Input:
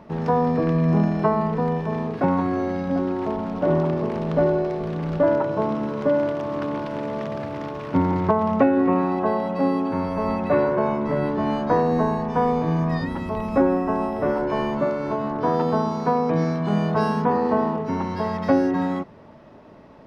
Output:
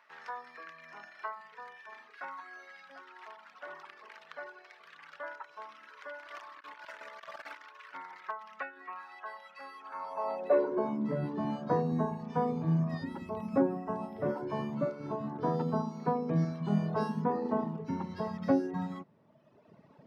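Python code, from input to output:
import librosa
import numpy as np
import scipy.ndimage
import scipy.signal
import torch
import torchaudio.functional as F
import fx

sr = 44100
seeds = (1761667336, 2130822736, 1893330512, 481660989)

y = fx.filter_sweep_highpass(x, sr, from_hz=1600.0, to_hz=140.0, start_s=9.78, end_s=11.29, q=2.0)
y = fx.dereverb_blind(y, sr, rt60_s=1.6)
y = fx.over_compress(y, sr, threshold_db=-46.0, ratio=-0.5, at=(6.25, 7.56), fade=0.02)
y = fx.dynamic_eq(y, sr, hz=2500.0, q=0.88, threshold_db=-41.0, ratio=4.0, max_db=-4)
y = y * 10.0 ** (-9.0 / 20.0)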